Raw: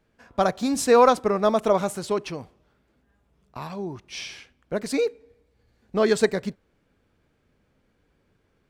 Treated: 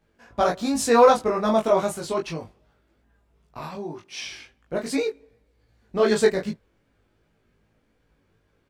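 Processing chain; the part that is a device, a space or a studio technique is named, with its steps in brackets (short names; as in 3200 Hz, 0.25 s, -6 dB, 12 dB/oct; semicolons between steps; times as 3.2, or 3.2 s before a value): 3.75–4.26 HPF 170 Hz 12 dB/oct; double-tracked vocal (doubler 18 ms -3 dB; chorus 2.6 Hz, delay 19 ms, depth 2.3 ms); gain +2 dB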